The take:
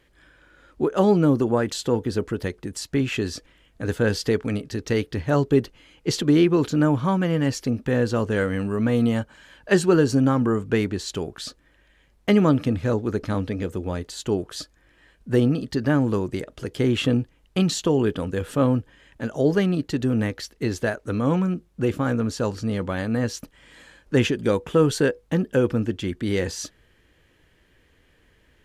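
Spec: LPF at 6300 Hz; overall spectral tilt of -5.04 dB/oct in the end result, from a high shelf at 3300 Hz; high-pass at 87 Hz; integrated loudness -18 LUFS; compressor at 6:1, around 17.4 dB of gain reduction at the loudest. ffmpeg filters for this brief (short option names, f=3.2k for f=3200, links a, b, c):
-af "highpass=87,lowpass=6.3k,highshelf=f=3.3k:g=6,acompressor=threshold=-33dB:ratio=6,volume=19dB"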